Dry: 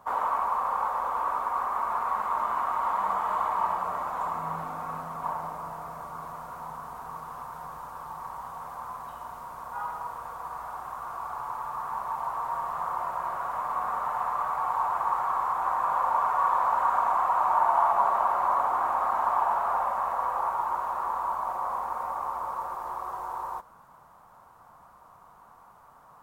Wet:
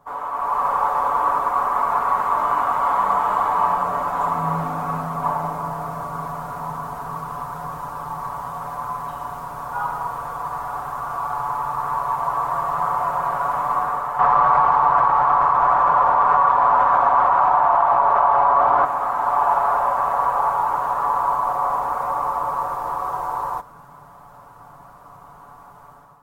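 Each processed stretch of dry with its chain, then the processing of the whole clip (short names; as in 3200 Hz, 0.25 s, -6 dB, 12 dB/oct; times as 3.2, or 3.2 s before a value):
14.19–18.85 Bessel low-pass 3400 Hz + echo 0.45 s -4.5 dB + fast leveller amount 100%
whole clip: comb 7 ms, depth 57%; AGC gain up to 11.5 dB; low shelf 470 Hz +6.5 dB; gain -4.5 dB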